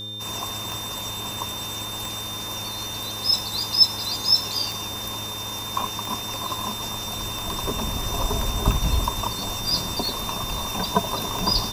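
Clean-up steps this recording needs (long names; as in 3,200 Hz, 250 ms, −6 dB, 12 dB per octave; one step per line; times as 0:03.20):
click removal
hum removal 106 Hz, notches 5
notch filter 3,600 Hz, Q 30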